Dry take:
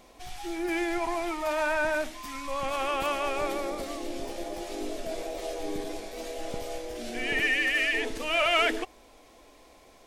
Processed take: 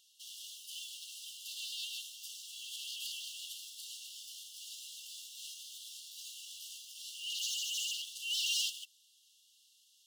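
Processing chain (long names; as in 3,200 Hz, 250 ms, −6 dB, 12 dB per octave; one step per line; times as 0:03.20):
in parallel at −10.5 dB: bit reduction 7 bits
on the sum: wave folding −21 dBFS
linear-phase brick-wall high-pass 2,700 Hz
level −3 dB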